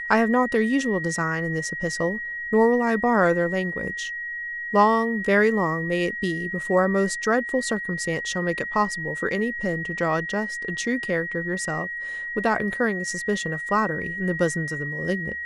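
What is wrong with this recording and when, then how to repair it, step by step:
tone 1900 Hz -29 dBFS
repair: notch 1900 Hz, Q 30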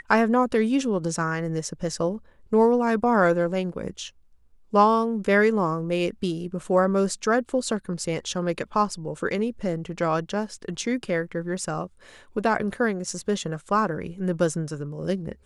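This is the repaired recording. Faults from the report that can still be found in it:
none

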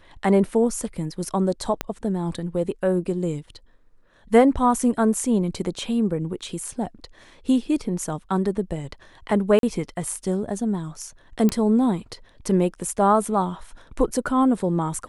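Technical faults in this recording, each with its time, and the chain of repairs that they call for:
1.81 pop -9 dBFS
9.59–9.63 gap 42 ms
11.49 pop -10 dBFS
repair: de-click; interpolate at 9.59, 42 ms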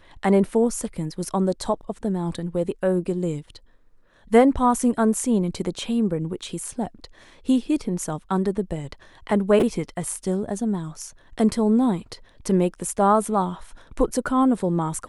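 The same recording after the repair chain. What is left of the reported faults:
1.81 pop

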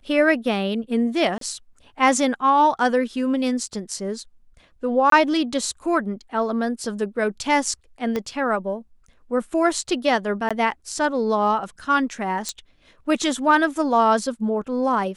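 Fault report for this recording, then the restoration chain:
1.38–1.41 gap 33 ms
5.1–5.12 gap 23 ms
8.16 pop -13 dBFS
10.49–10.51 gap 16 ms
12.49 pop -13 dBFS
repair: de-click; interpolate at 1.38, 33 ms; interpolate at 5.1, 23 ms; interpolate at 10.49, 16 ms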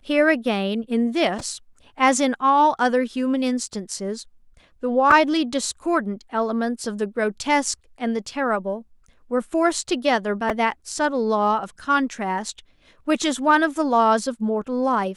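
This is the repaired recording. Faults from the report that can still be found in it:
8.16 pop

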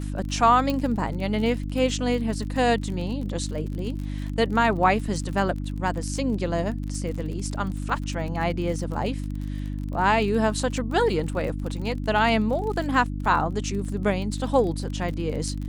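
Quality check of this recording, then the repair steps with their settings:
crackle 36/s -32 dBFS
hum 50 Hz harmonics 6 -30 dBFS
0.7 pop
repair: de-click; de-hum 50 Hz, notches 6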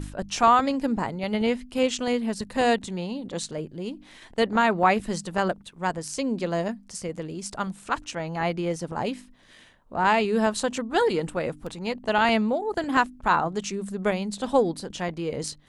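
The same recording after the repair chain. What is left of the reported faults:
none

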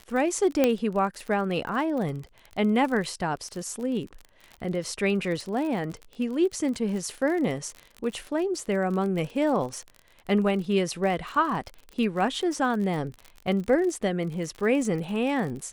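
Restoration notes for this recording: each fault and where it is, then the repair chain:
crackle 41/s -32 dBFS
0.64 pop -8 dBFS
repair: de-click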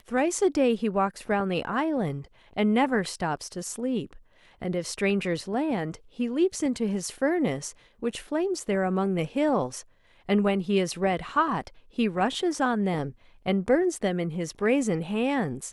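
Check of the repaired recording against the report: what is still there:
none

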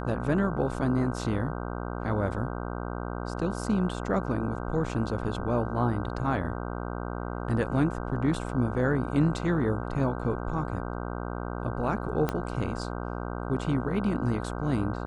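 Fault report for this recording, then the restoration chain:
buzz 60 Hz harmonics 26 -34 dBFS
12.29 pop -14 dBFS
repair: de-click; de-hum 60 Hz, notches 26

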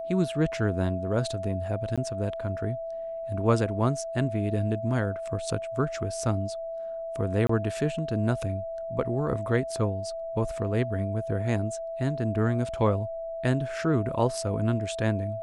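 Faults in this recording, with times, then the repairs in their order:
tone 660 Hz -32 dBFS
1.96–1.98 gap 16 ms
7.47–7.49 gap 24 ms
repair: notch 660 Hz, Q 30; interpolate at 1.96, 16 ms; interpolate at 7.47, 24 ms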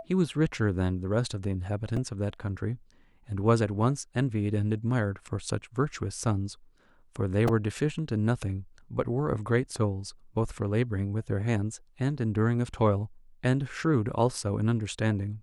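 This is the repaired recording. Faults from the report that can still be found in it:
none

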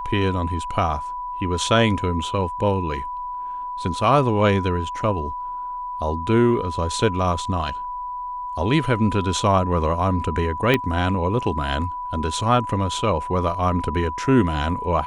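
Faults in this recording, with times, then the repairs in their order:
tone 990 Hz -27 dBFS
10.74 pop -6 dBFS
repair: de-click; notch 990 Hz, Q 30

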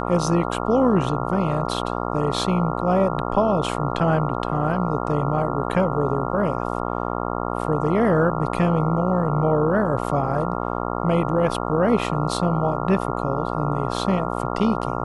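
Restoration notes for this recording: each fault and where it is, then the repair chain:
buzz 60 Hz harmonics 23 -26 dBFS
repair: de-hum 60 Hz, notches 23

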